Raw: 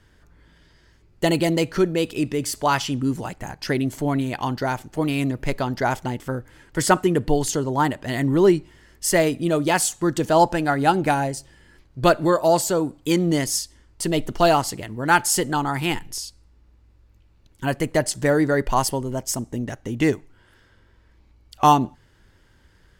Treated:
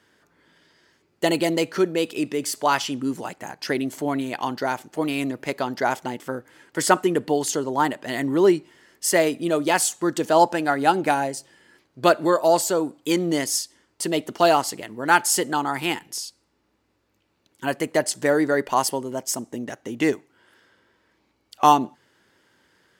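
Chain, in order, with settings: HPF 250 Hz 12 dB/oct

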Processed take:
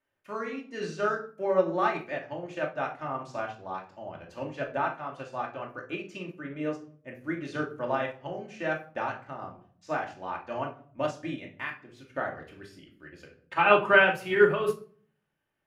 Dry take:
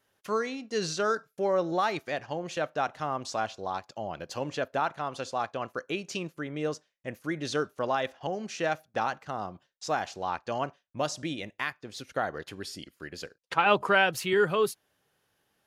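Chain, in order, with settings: resonant high shelf 3200 Hz -7 dB, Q 1.5; reverb RT60 0.55 s, pre-delay 3 ms, DRR -1 dB; upward expander 1.5:1, over -38 dBFS

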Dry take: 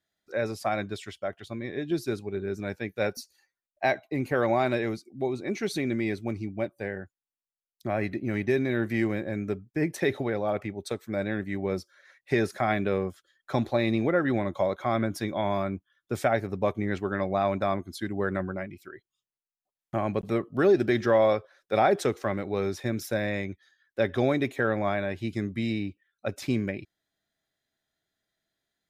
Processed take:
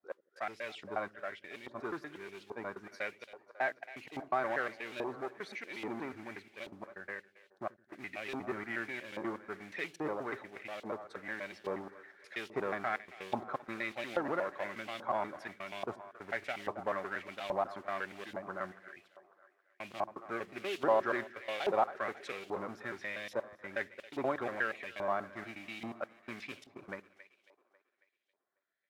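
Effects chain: slices in reverse order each 0.12 s, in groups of 3; tilt shelf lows +5.5 dB, about 860 Hz; modulation noise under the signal 24 dB; in parallel at -9 dB: wavefolder -25.5 dBFS; on the sum: split-band echo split 370 Hz, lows 85 ms, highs 0.273 s, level -15 dB; LFO band-pass saw up 1.2 Hz 880–3200 Hz; gain +1 dB

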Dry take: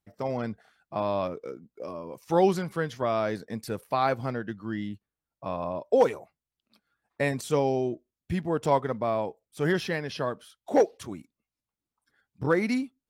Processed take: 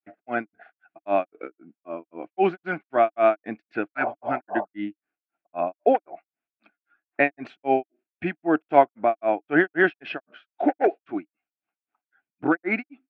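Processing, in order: spectral repair 3.95–4.55, 400–1200 Hz before; grains 0.206 s, grains 3.8/s, pitch spread up and down by 0 st; speaker cabinet 310–2600 Hz, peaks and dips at 310 Hz +10 dB, 490 Hz -8 dB, 720 Hz +10 dB, 1000 Hz -7 dB, 1500 Hz +9 dB, 2500 Hz +9 dB; gain +7 dB

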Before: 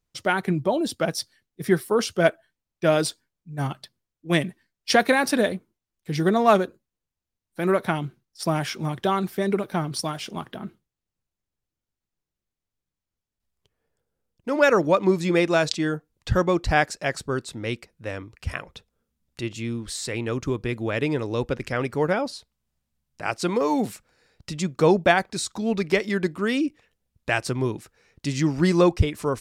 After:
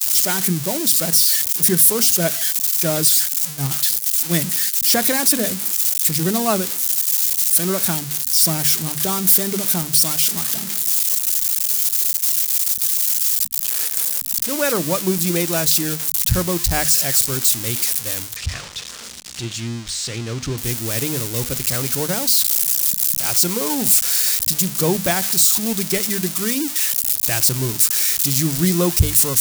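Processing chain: switching spikes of -9.5 dBFS; upward compressor, threshold -23 dBFS; tone controls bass +10 dB, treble +6 dB; notches 50/100/150/200/250 Hz; expander -18 dBFS; 18.36–20.58 air absorption 120 m; gain -4 dB

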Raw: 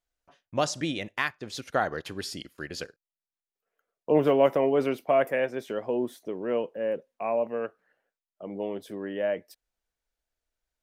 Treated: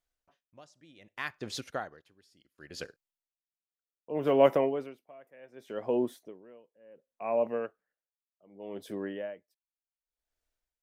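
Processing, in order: dB-linear tremolo 0.67 Hz, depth 30 dB

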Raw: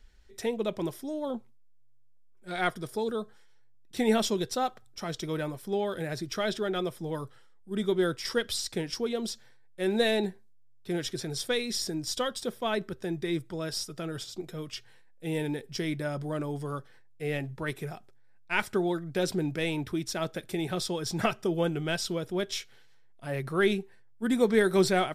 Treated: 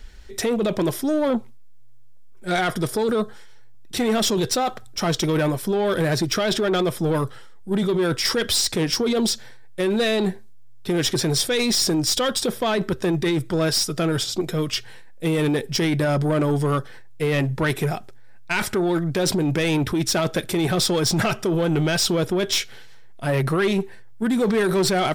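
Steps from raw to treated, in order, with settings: in parallel at +3 dB: negative-ratio compressor -32 dBFS, ratio -0.5; on the sum: soft clip -21 dBFS, distortion -15 dB; gain +6 dB

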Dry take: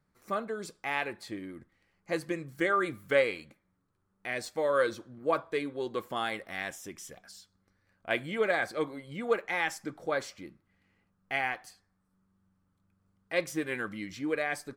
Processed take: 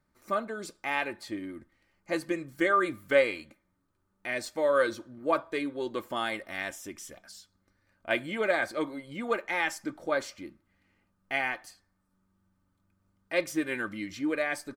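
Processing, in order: comb 3.3 ms, depth 41%; gain +1 dB

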